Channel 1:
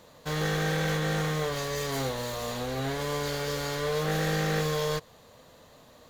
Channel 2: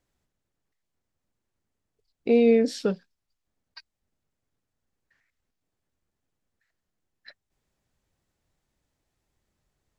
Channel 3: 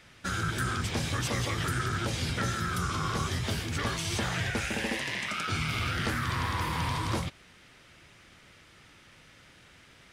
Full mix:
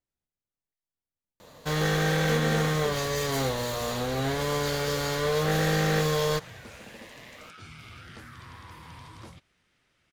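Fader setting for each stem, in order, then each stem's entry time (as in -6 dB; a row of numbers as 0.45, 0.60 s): +3.0, -15.0, -15.5 dB; 1.40, 0.00, 2.10 s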